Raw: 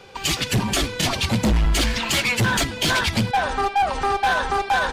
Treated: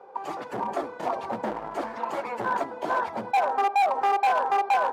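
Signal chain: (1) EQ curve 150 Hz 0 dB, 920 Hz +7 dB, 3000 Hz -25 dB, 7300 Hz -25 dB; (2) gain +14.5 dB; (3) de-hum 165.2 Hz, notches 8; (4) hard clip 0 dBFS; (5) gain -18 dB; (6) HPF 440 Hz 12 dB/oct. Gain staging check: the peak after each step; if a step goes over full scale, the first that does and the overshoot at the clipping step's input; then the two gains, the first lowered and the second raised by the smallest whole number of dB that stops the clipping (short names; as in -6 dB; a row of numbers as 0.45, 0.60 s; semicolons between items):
-7.0, +7.5, +8.0, 0.0, -18.0, -14.0 dBFS; step 2, 8.0 dB; step 2 +6.5 dB, step 5 -10 dB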